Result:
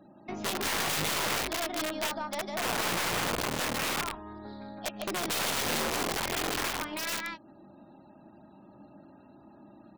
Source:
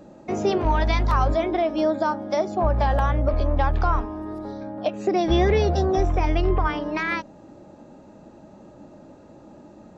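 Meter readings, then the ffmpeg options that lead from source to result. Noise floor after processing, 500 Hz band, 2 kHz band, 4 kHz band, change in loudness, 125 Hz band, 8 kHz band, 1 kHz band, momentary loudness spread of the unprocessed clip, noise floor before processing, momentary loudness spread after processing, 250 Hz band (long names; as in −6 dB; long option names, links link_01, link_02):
−55 dBFS, −13.0 dB, −1.0 dB, +4.5 dB, −7.5 dB, −18.0 dB, can't be measured, −9.0 dB, 9 LU, −48 dBFS, 11 LU, −11.5 dB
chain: -filter_complex "[0:a]lowpass=frequency=4100:width_type=q:width=2,equalizer=frequency=490:width_type=o:width=0.36:gain=-15,asplit=2[link_01][link_02];[link_02]adelay=15,volume=-13.5dB[link_03];[link_01][link_03]amix=inputs=2:normalize=0,asplit=2[link_04][link_05];[link_05]aecho=0:1:153:0.631[link_06];[link_04][link_06]amix=inputs=2:normalize=0,aeval=exprs='(mod(7.08*val(0)+1,2)-1)/7.08':channel_layout=same,asplit=2[link_07][link_08];[link_08]acompressor=threshold=-33dB:ratio=6,volume=-0.5dB[link_09];[link_07][link_09]amix=inputs=2:normalize=0,highpass=frequency=170:poles=1,afftfilt=real='re*gte(hypot(re,im),0.00355)':imag='im*gte(hypot(re,im),0.00355)':win_size=1024:overlap=0.75,aeval=exprs='0.316*(cos(1*acos(clip(val(0)/0.316,-1,1)))-cos(1*PI/2))+0.0398*(cos(3*acos(clip(val(0)/0.316,-1,1)))-cos(3*PI/2))+0.0158*(cos(4*acos(clip(val(0)/0.316,-1,1)))-cos(4*PI/2))':channel_layout=same,volume=-7.5dB"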